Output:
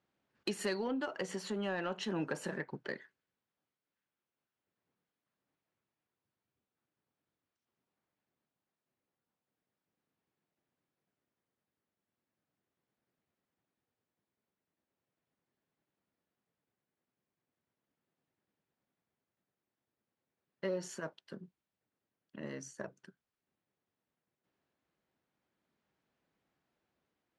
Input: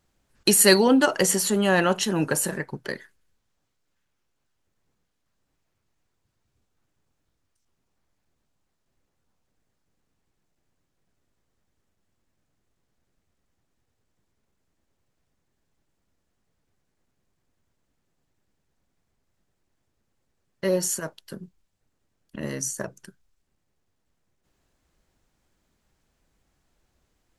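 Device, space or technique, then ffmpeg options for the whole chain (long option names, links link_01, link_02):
AM radio: -af "highpass=160,lowpass=3500,acompressor=threshold=-23dB:ratio=5,asoftclip=type=tanh:threshold=-15.5dB,tremolo=f=0.38:d=0.28,volume=-7.5dB"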